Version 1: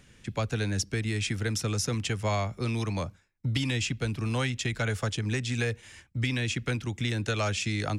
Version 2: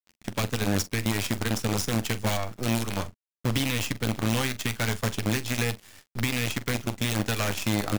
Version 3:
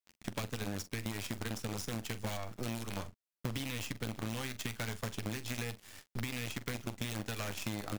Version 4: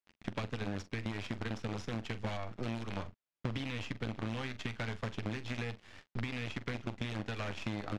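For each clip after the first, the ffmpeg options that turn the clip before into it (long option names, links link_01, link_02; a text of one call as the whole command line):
ffmpeg -i in.wav -filter_complex "[0:a]acrusher=bits=5:dc=4:mix=0:aa=0.000001,equalizer=frequency=230:width=2.5:gain=5,asplit=2[link_01][link_02];[link_02]aecho=0:1:10|44:0.251|0.178[link_03];[link_01][link_03]amix=inputs=2:normalize=0" out.wav
ffmpeg -i in.wav -af "acompressor=threshold=-33dB:ratio=6,volume=-1.5dB" out.wav
ffmpeg -i in.wav -af "lowpass=3400,volume=1dB" out.wav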